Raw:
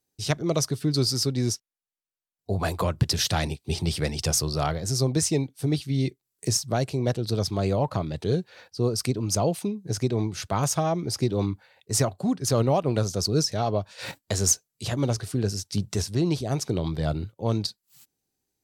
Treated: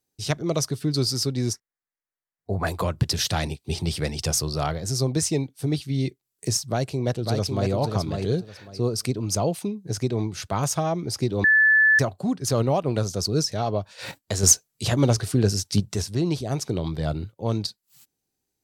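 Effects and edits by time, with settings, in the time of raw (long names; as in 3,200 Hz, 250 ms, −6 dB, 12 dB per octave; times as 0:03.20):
0:01.53–0:02.67: high shelf with overshoot 2,400 Hz −7 dB, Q 3
0:06.63–0:07.70: delay throw 550 ms, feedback 20%, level −4.5 dB
0:11.44–0:11.99: beep over 1,740 Hz −13.5 dBFS
0:14.43–0:15.80: clip gain +5.5 dB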